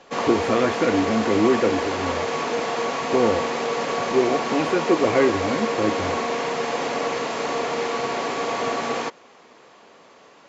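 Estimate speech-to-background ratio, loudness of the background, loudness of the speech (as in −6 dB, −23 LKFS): 2.0 dB, −25.0 LKFS, −23.0 LKFS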